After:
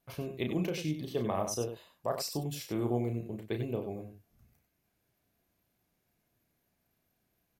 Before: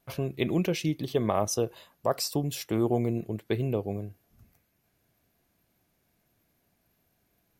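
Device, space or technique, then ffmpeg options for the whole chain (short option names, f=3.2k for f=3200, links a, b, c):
slapback doubling: -filter_complex "[0:a]asplit=3[a][b][c];[b]adelay=33,volume=-6dB[d];[c]adelay=95,volume=-8.5dB[e];[a][d][e]amix=inputs=3:normalize=0,volume=-7dB"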